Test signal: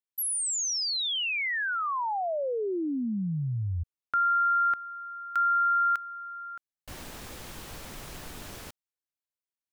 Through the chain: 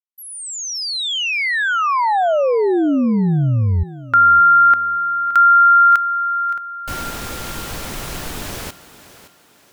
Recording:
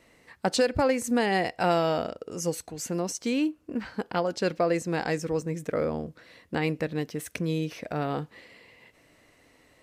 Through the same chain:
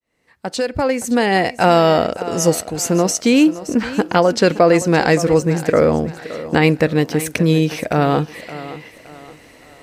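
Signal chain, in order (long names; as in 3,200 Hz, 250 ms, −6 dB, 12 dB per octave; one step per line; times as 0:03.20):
fade in at the beginning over 2.24 s
on a send: feedback echo with a high-pass in the loop 569 ms, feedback 40%, high-pass 160 Hz, level −14.5 dB
on the sum: boost into a limiter +15 dB
level −1 dB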